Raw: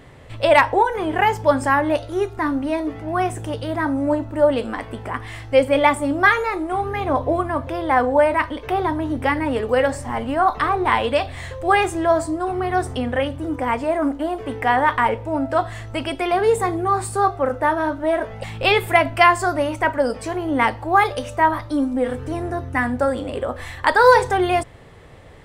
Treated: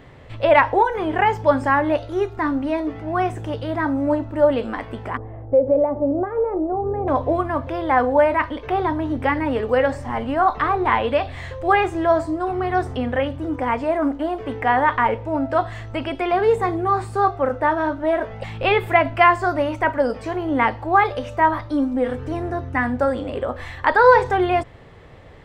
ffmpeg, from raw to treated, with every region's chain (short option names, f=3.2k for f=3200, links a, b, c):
-filter_complex "[0:a]asettb=1/sr,asplit=3[a][b][c];[a]atrim=end=5.174[d];[b]atrim=start=5.17:end=7.08,asetpts=PTS-STARTPTS,afade=t=in:d=0.004:c=qsin,afade=t=out:st=1.906:d=0.004:c=qsin,aemphasis=mode=reproduction:type=50fm,acompressor=threshold=-20dB:ratio=3:attack=3.2:release=140:knee=1:detection=peak,lowpass=f=570:t=q:w=2.3[e];[c]atrim=start=7.076[f];[d][e]acrossfade=d=0.004:c1=hsin:c2=qsin[g];[g][f]acrossfade=d=0.004:c1=qsin:c2=hsin,equalizer=f=10k:t=o:w=0.91:g=-9,acrossover=split=3100[h][i];[i]acompressor=threshold=-42dB:ratio=4:attack=1:release=60[j];[h][j]amix=inputs=2:normalize=0,highshelf=f=7.8k:g=-5"